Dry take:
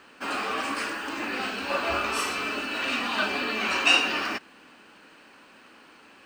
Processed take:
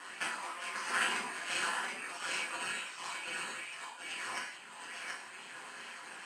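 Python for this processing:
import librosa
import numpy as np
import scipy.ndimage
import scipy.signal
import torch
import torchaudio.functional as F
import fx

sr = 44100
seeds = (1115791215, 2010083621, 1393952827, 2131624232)

p1 = fx.over_compress(x, sr, threshold_db=-35.0, ratio=-0.5)
p2 = fx.peak_eq(p1, sr, hz=630.0, db=-6.0, octaves=1.6)
p3 = np.repeat(p2[::4], 4)[:len(p2)]
p4 = p3 + fx.echo_single(p3, sr, ms=725, db=-4.0, dry=0)
p5 = fx.dereverb_blind(p4, sr, rt60_s=1.4)
p6 = fx.cabinet(p5, sr, low_hz=400.0, low_slope=24, high_hz=9000.0, hz=(490.0, 760.0, 1300.0, 2600.0, 3800.0, 6000.0), db=(-8, -3, -8, -7, -6, -3))
p7 = p6 * np.sin(2.0 * np.pi * 88.0 * np.arange(len(p6)) / sr)
p8 = fx.rev_gated(p7, sr, seeds[0], gate_ms=210, shape='falling', drr_db=-3.0)
p9 = fx.bell_lfo(p8, sr, hz=2.3, low_hz=920.0, high_hz=2700.0, db=6)
y = F.gain(torch.from_numpy(p9), 1.5).numpy()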